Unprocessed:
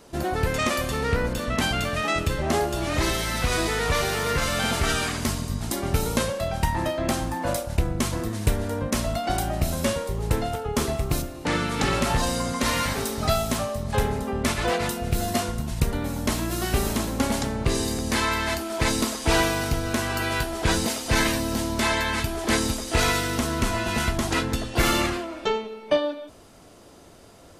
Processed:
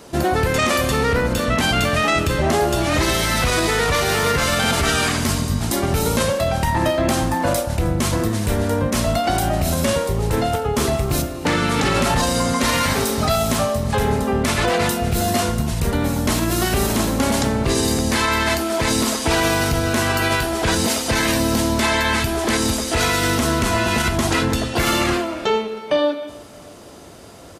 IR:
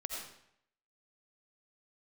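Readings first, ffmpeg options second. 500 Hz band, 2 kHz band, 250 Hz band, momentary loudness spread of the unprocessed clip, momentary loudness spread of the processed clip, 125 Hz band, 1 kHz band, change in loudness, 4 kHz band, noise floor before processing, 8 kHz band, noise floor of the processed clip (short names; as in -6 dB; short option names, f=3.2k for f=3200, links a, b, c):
+6.5 dB, +6.0 dB, +6.5 dB, 4 LU, 3 LU, +5.5 dB, +6.5 dB, +6.0 dB, +6.0 dB, -48 dBFS, +6.0 dB, -36 dBFS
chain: -af "highpass=51,alimiter=limit=-17.5dB:level=0:latency=1:release=42,aecho=1:1:314|628|942:0.0841|0.0328|0.0128,volume=8.5dB"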